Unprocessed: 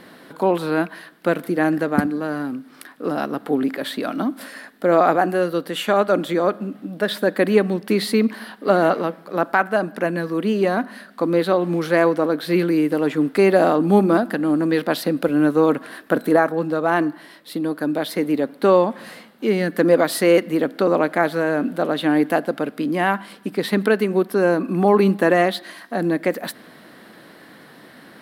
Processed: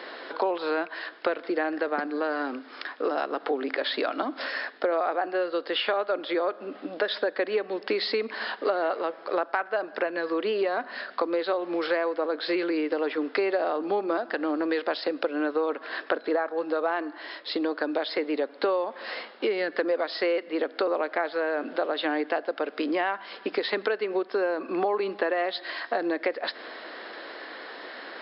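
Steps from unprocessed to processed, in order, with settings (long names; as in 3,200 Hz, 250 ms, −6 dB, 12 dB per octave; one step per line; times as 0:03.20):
high-pass filter 380 Hz 24 dB per octave
downward compressor 6 to 1, threshold −31 dBFS, peak gain reduction 18.5 dB
linear-phase brick-wall low-pass 5,400 Hz
level +6.5 dB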